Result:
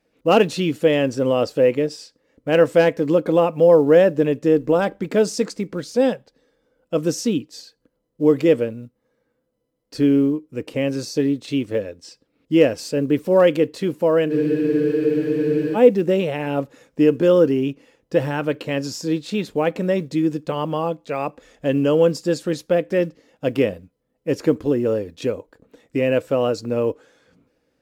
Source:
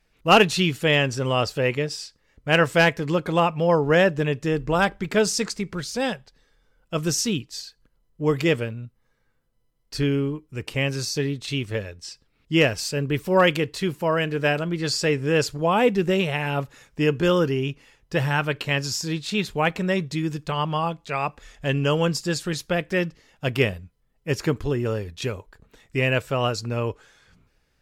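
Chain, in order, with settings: high-pass 110 Hz 6 dB/octave; in parallel at -3 dB: peak limiter -17 dBFS, peak gain reduction 10.5 dB; on the sum: short-mantissa float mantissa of 4-bit; small resonant body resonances 290/490 Hz, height 15 dB, ringing for 25 ms; spectral freeze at 14.33 s, 1.42 s; trim -9 dB

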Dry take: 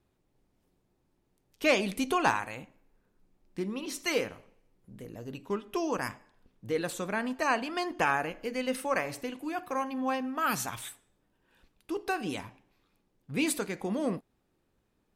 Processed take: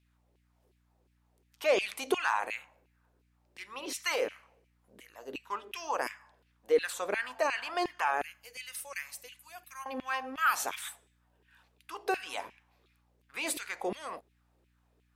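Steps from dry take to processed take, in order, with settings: 8.22–9.86 s: differentiator; peak limiter -21.5 dBFS, peak gain reduction 8 dB; LFO high-pass saw down 2.8 Hz 360–2700 Hz; hum 60 Hz, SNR 35 dB

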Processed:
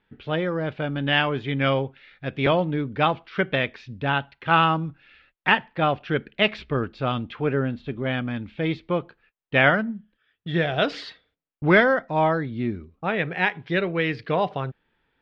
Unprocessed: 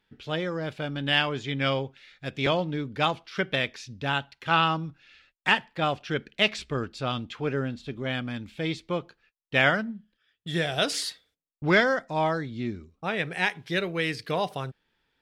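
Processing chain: Bessel low-pass 2.4 kHz, order 4; trim +5 dB

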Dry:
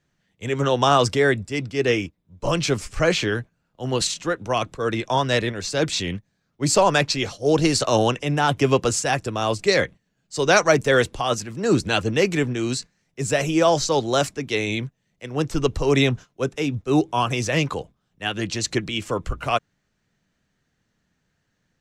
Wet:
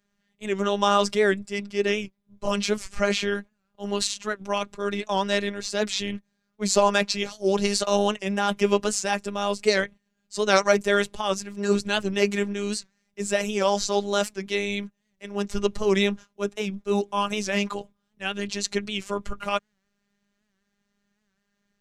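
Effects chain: robot voice 202 Hz; warped record 78 rpm, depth 100 cents; trim -1 dB

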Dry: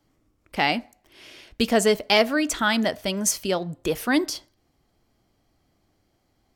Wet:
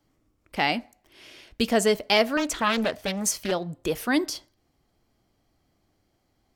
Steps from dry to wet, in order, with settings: 2.37–3.52 s: loudspeaker Doppler distortion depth 0.65 ms; trim -2 dB

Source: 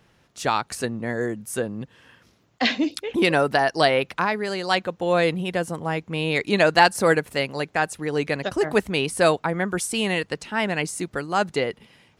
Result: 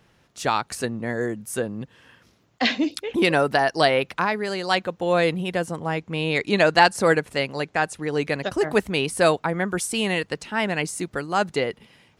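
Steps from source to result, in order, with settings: 5.66–8.19 s: low-pass 9.9 kHz 12 dB/octave

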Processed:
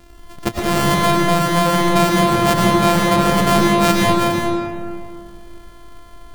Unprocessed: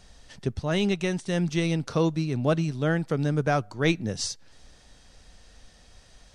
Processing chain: sorted samples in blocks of 128 samples; algorithmic reverb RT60 2.3 s, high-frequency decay 0.55×, pre-delay 70 ms, DRR -2.5 dB; trim +6.5 dB

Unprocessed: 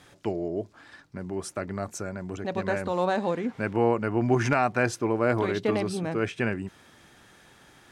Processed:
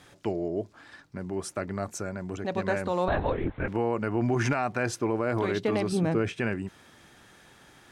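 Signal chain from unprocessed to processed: 5.92–6.33 s: bass shelf 490 Hz +6.5 dB; peak limiter -16 dBFS, peak gain reduction 6.5 dB; 3.08–3.68 s: LPC vocoder at 8 kHz whisper

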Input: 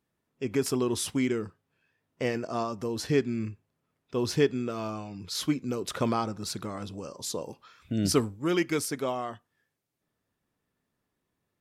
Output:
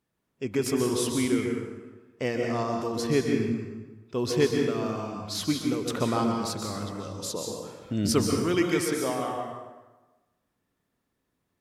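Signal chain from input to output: plate-style reverb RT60 1.2 s, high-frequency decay 0.7×, pre-delay 115 ms, DRR 1.5 dB

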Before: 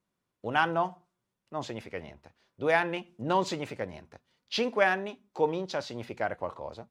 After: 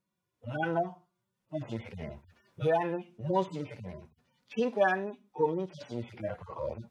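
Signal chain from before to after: harmonic-percussive separation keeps harmonic; recorder AGC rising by 6.1 dB/s

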